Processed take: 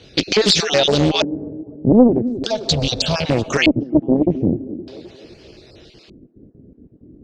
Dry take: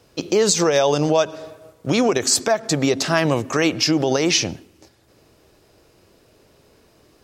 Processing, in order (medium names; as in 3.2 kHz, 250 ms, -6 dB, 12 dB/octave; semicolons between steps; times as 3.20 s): random holes in the spectrogram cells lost 24%; in parallel at +1 dB: compression, threshold -27 dBFS, peak gain reduction 13 dB; on the sum: peaking EQ 980 Hz -13 dB 1.1 oct; AM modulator 230 Hz, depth 40%; 2.33–3.26 s: static phaser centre 800 Hz, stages 4; Chebyshev shaper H 5 -7 dB, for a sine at -3 dBFS; on a send: feedback echo behind a band-pass 259 ms, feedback 51%, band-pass 490 Hz, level -10 dB; on the sum: LFO low-pass square 0.41 Hz 260–4000 Hz; loudspeaker Doppler distortion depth 0.71 ms; trim -2.5 dB